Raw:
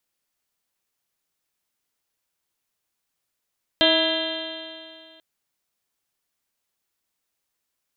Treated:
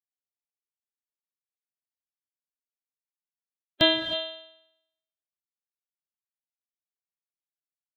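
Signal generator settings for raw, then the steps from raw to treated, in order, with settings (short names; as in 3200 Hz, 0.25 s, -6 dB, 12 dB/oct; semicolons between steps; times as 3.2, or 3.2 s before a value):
stretched partials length 1.39 s, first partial 319 Hz, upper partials 3.5/-7/-12/-3/-7/-13.5/-6/5/-0.5/-2.5 dB, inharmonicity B 0.0027, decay 2.34 s, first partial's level -22.5 dB
per-bin expansion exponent 3; bell 130 Hz +11 dB 1 oct; non-linear reverb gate 0.34 s rising, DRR 8.5 dB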